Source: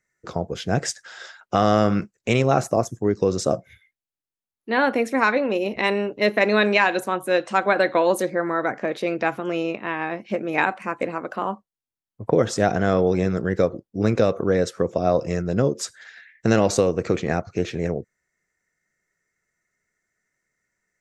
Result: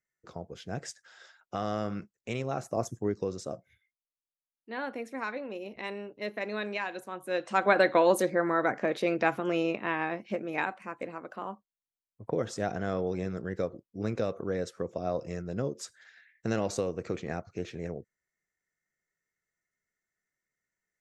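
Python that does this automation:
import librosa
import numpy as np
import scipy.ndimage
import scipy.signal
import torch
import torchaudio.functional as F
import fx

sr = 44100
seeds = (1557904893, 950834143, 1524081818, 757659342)

y = fx.gain(x, sr, db=fx.line((2.67, -14.5), (2.89, -5.5), (3.45, -16.0), (7.09, -16.0), (7.69, -3.5), (9.95, -3.5), (10.79, -12.0)))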